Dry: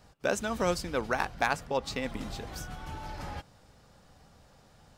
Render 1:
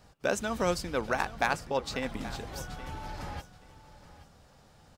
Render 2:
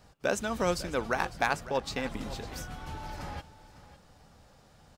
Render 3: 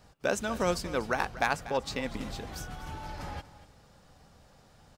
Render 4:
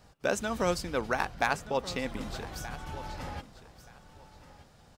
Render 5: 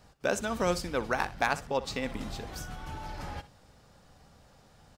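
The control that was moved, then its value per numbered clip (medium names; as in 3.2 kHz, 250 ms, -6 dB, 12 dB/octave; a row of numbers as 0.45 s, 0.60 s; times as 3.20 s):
feedback delay, time: 827 ms, 553 ms, 240 ms, 1226 ms, 62 ms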